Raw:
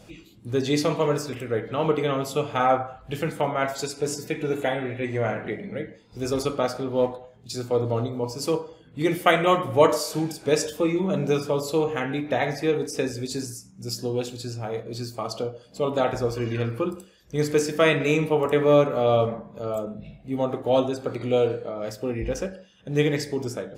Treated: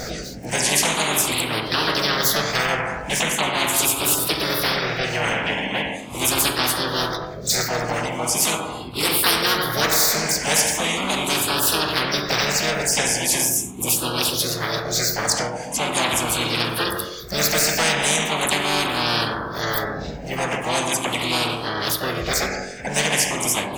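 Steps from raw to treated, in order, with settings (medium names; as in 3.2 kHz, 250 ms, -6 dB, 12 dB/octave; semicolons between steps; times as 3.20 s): drifting ripple filter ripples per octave 0.59, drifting +0.4 Hz, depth 24 dB; harmony voices +4 st -7 dB, +5 st -5 dB, +7 st -9 dB; de-hum 45.31 Hz, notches 39; spectrum-flattening compressor 4:1; trim -6.5 dB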